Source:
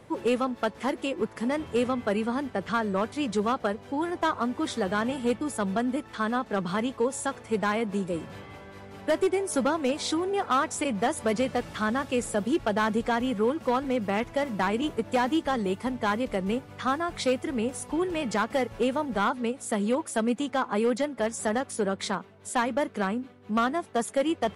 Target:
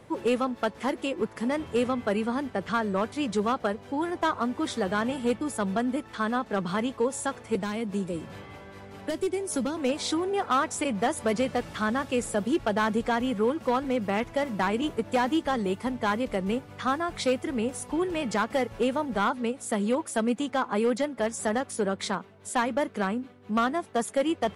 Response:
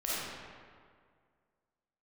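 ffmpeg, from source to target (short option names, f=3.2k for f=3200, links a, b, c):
-filter_complex "[0:a]asettb=1/sr,asplit=3[a][b][c];[a]atrim=end=7.554[d];[b]atrim=start=7.55:end=9.77,asetpts=PTS-STARTPTS,afade=t=in:d=0.004:c=qsin,afade=t=out:st=2.216:d=0.004:c=qsin,acrossover=split=370|3000[e][f][g];[f]acompressor=threshold=-37dB:ratio=3[h];[e][h][g]amix=inputs=3:normalize=0[i];[c]atrim=start=9.766[j];[d][i]acrossfade=d=0.004:c1=hsin:c2=qsin[k];[k][j]acrossfade=d=0.004:c1=qsin:c2=hsin"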